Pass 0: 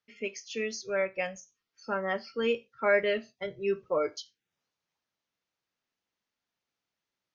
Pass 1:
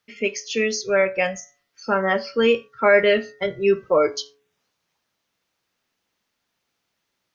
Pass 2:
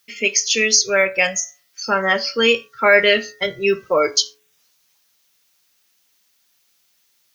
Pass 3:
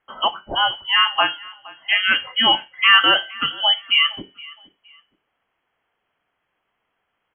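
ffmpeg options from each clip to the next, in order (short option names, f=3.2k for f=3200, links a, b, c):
-filter_complex "[0:a]asplit=2[a][b];[b]alimiter=limit=-21.5dB:level=0:latency=1,volume=0.5dB[c];[a][c]amix=inputs=2:normalize=0,bandreject=f=142:t=h:w=4,bandreject=f=284:t=h:w=4,bandreject=f=426:t=h:w=4,bandreject=f=568:t=h:w=4,bandreject=f=710:t=h:w=4,bandreject=f=852:t=h:w=4,bandreject=f=994:t=h:w=4,bandreject=f=1.136k:t=h:w=4,bandreject=f=1.278k:t=h:w=4,bandreject=f=1.42k:t=h:w=4,bandreject=f=1.562k:t=h:w=4,bandreject=f=1.704k:t=h:w=4,bandreject=f=1.846k:t=h:w=4,bandreject=f=1.988k:t=h:w=4,volume=5.5dB"
-af "crystalizer=i=7:c=0,volume=-1dB"
-af "aecho=1:1:467|934:0.0794|0.0214,lowpass=f=2.9k:t=q:w=0.5098,lowpass=f=2.9k:t=q:w=0.6013,lowpass=f=2.9k:t=q:w=0.9,lowpass=f=2.9k:t=q:w=2.563,afreqshift=-3400"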